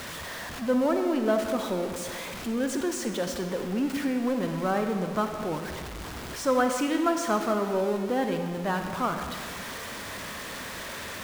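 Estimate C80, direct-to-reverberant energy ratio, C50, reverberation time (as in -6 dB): 7.0 dB, 5.0 dB, 6.0 dB, 1.8 s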